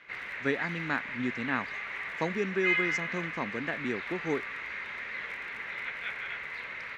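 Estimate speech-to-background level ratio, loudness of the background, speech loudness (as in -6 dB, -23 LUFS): 0.5 dB, -34.5 LUFS, -34.0 LUFS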